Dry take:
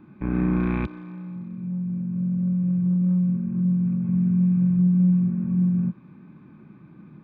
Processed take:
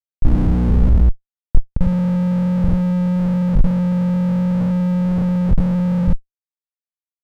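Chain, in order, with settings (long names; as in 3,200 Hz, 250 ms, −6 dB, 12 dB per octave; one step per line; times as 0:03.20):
moving average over 27 samples
four-comb reverb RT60 1 s, combs from 26 ms, DRR −8.5 dB
comparator with hysteresis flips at −19.5 dBFS
spectral tilt −4.5 dB per octave
level −11.5 dB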